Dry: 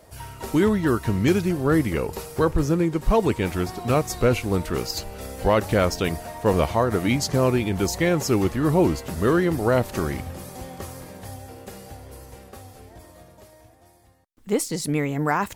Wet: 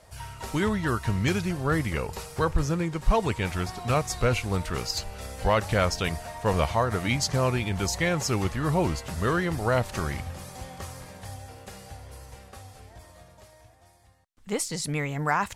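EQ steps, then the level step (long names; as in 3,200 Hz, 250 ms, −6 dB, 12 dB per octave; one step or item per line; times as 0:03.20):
low-pass filter 10,000 Hz 12 dB per octave
parametric band 320 Hz −10 dB 1.5 octaves
0.0 dB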